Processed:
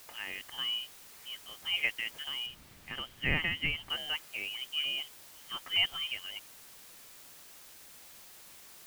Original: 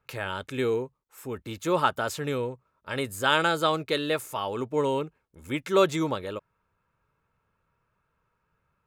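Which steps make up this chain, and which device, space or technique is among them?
scrambled radio voice (BPF 310–3200 Hz; inverted band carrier 3400 Hz; white noise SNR 15 dB); 2.46–3.9 tone controls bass +14 dB, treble -7 dB; gain -7.5 dB

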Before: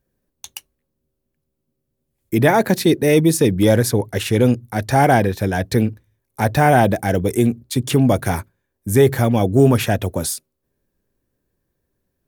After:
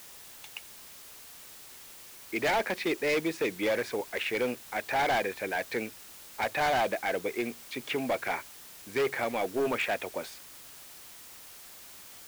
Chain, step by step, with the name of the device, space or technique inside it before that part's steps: drive-through speaker (BPF 490–2800 Hz; bell 2300 Hz +10.5 dB 0.51 oct; hard clip -16 dBFS, distortion -9 dB; white noise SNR 16 dB); gain -7.5 dB

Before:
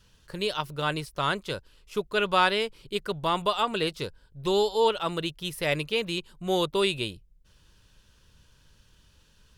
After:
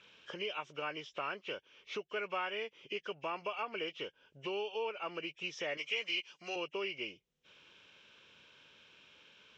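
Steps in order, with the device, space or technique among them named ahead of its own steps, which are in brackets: hearing aid with frequency lowering (nonlinear frequency compression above 1600 Hz 1.5:1; compressor 3:1, threshold -44 dBFS, peak gain reduction 19.5 dB; speaker cabinet 350–6000 Hz, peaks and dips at 970 Hz -3 dB, 3100 Hz +6 dB, 4500 Hz -8 dB); 5.77–6.56 tilt +4 dB/oct; gain +4 dB

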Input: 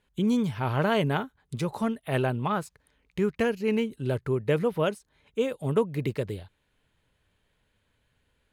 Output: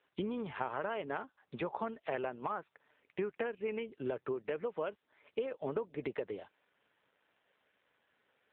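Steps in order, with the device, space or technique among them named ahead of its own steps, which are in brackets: voicemail (BPF 410–2600 Hz; compressor 10:1, threshold -37 dBFS, peak gain reduction 16 dB; gain +4.5 dB; AMR-NB 7.4 kbps 8000 Hz)

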